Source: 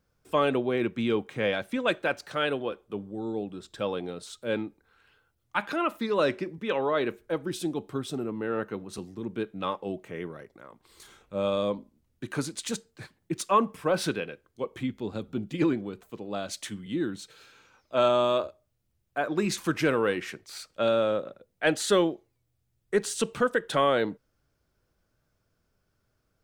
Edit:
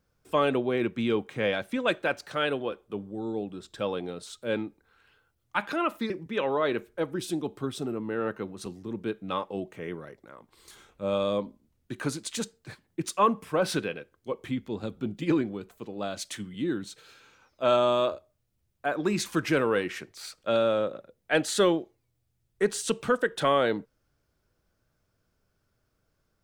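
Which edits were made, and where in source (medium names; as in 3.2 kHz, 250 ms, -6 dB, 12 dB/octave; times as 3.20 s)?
6.10–6.42 s: delete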